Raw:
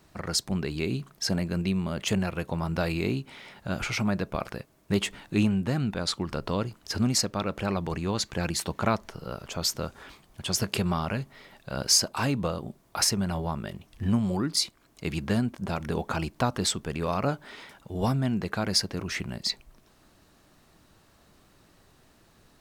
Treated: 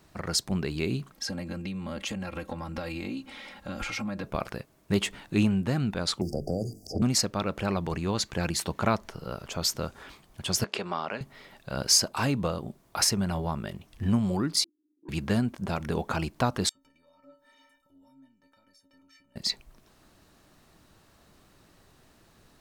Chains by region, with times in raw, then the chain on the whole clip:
0:01.11–0:04.24: high-shelf EQ 9,000 Hz −4.5 dB + downward compressor 10 to 1, threshold −31 dBFS + comb filter 3.7 ms, depth 85%
0:06.21–0:07.02: linear-phase brick-wall band-stop 800–4,600 Hz + mains-hum notches 50/100/150/200/250/300/350/400/450 Hz + multiband upward and downward compressor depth 100%
0:10.64–0:11.21: high-pass filter 370 Hz + high-frequency loss of the air 100 metres
0:14.64–0:15.09: lower of the sound and its delayed copy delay 0.71 ms + flat-topped band-pass 310 Hz, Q 5.5 + saturating transformer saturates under 620 Hz
0:16.69–0:19.36: downward compressor 12 to 1, threshold −39 dBFS + stiff-string resonator 270 Hz, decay 0.41 s, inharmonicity 0.03
whole clip: no processing

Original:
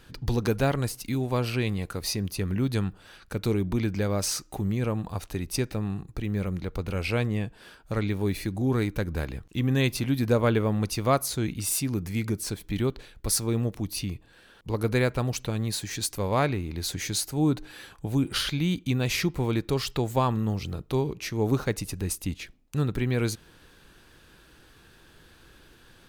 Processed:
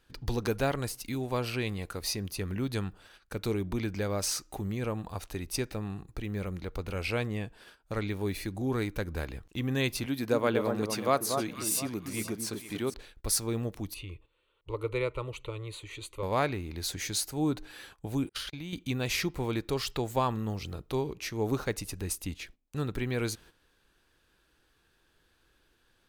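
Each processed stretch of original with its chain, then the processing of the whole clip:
0:10.06–0:12.94: high-pass filter 160 Hz + delay that swaps between a low-pass and a high-pass 235 ms, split 1,300 Hz, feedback 52%, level −5 dB
0:13.94–0:16.23: high-frequency loss of the air 71 metres + phaser with its sweep stopped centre 1,100 Hz, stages 8
0:18.29–0:18.73: noise gate −30 dBFS, range −39 dB + downward compressor 3 to 1, threshold −32 dBFS
whole clip: noise gate −48 dBFS, range −11 dB; parametric band 150 Hz −5.5 dB 1.7 octaves; level −2.5 dB

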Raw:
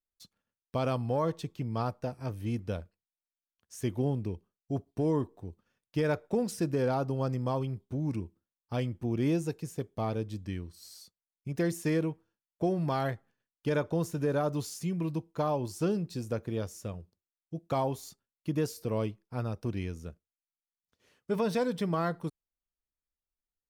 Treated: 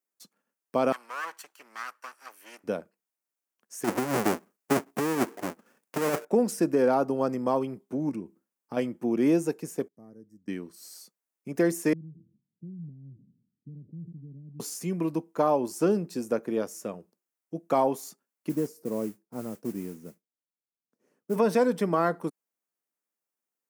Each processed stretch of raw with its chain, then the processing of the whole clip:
0:00.92–0:02.64: lower of the sound and its delayed copy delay 0.68 ms + high-pass filter 1,400 Hz
0:03.84–0:06.25: each half-wave held at its own peak + compressor whose output falls as the input rises −27 dBFS, ratio −0.5
0:08.09–0:08.77: low-shelf EQ 200 Hz +9 dB + downward compressor 2.5 to 1, threshold −35 dBFS
0:09.88–0:10.48: elliptic band-stop filter 1,900–5,300 Hz + guitar amp tone stack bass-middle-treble 10-0-1
0:11.93–0:14.60: inverse Chebyshev low-pass filter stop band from 860 Hz, stop band 80 dB + level that may fall only so fast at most 68 dB per second
0:18.49–0:21.36: drawn EQ curve 180 Hz 0 dB, 3,400 Hz −19 dB, 5,200 Hz −13 dB + noise that follows the level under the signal 23 dB
whole clip: high-pass filter 210 Hz 24 dB per octave; parametric band 3,700 Hz −10 dB 0.95 octaves; level +7 dB

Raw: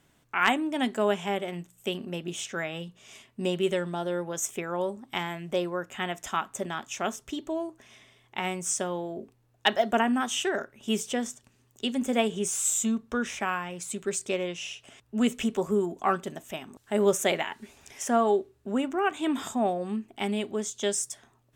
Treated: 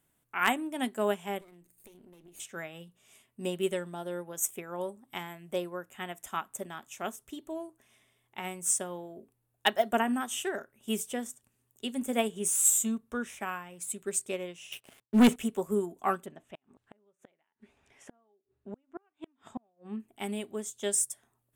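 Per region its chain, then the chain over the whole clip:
0:01.41–0:02.40: lower of the sound and its delayed copy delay 0.45 ms + parametric band 350 Hz +6.5 dB 0.41 octaves + downward compressor 12 to 1, threshold −40 dBFS
0:14.72–0:15.36: downward expander −59 dBFS + band-pass filter 120–4,800 Hz + leveller curve on the samples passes 3
0:16.26–0:20.00: low-pass filter 3,300 Hz + gate with flip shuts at −21 dBFS, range −35 dB
whole clip: high shelf with overshoot 7,800 Hz +10.5 dB, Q 1.5; expander for the loud parts 1.5 to 1, over −39 dBFS

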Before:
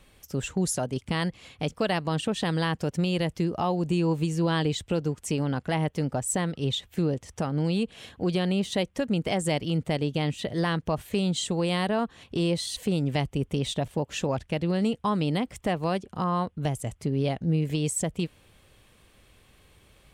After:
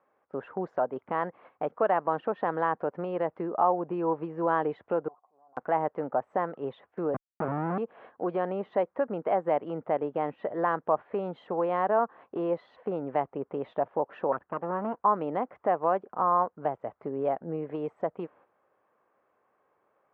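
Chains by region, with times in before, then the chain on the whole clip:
0:05.08–0:05.57: formant resonators in series a + downward compressor 5 to 1, threshold −50 dBFS + transient designer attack −11 dB, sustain +5 dB
0:07.14–0:07.78: comparator with hysteresis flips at −29.5 dBFS + bass and treble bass +15 dB, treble −8 dB
0:14.32–0:15.00: lower of the sound and its delayed copy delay 0.67 ms + parametric band 6,100 Hz −13.5 dB 1.6 octaves
whole clip: low-pass filter 1,300 Hz 24 dB per octave; noise gate −50 dBFS, range −9 dB; high-pass filter 590 Hz 12 dB per octave; level +6.5 dB

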